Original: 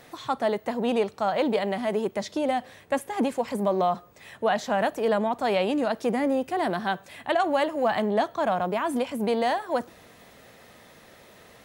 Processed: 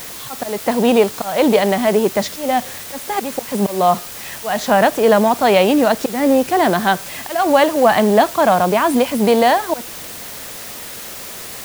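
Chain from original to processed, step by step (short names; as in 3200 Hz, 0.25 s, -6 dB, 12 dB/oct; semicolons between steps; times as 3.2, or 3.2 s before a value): auto swell 0.237 s; in parallel at -3 dB: requantised 6-bit, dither triangular; on the sum: gain +7 dB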